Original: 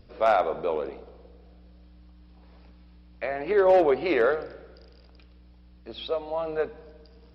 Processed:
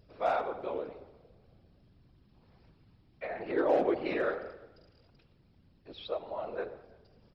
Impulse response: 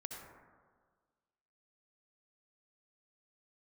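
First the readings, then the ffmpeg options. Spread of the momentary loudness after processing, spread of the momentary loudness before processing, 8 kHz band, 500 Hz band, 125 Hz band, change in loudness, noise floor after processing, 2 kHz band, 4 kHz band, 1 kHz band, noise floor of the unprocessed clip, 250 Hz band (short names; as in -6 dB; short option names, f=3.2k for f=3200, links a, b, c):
19 LU, 17 LU, n/a, -8.5 dB, -6.5 dB, -8.5 dB, -65 dBFS, -8.0 dB, -8.0 dB, -8.0 dB, -53 dBFS, -5.5 dB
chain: -filter_complex "[0:a]asplit=2[a][b];[1:a]atrim=start_sample=2205,afade=t=out:st=0.29:d=0.01,atrim=end_sample=13230[c];[b][c]afir=irnorm=-1:irlink=0,volume=-5dB[d];[a][d]amix=inputs=2:normalize=0,afftfilt=real='hypot(re,im)*cos(2*PI*random(0))':imag='hypot(re,im)*sin(2*PI*random(1))':win_size=512:overlap=0.75,asplit=2[e][f];[f]adelay=340,highpass=300,lowpass=3.4k,asoftclip=type=hard:threshold=-17.5dB,volume=-27dB[g];[e][g]amix=inputs=2:normalize=0,volume=-5dB"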